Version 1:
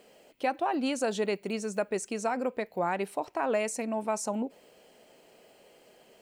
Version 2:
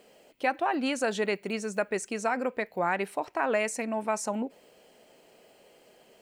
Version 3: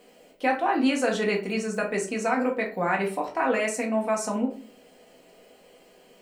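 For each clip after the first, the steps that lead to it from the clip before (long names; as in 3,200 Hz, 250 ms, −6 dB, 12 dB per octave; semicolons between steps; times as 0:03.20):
dynamic equaliser 1,800 Hz, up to +7 dB, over −48 dBFS, Q 1.2
rectangular room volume 230 cubic metres, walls furnished, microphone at 1.9 metres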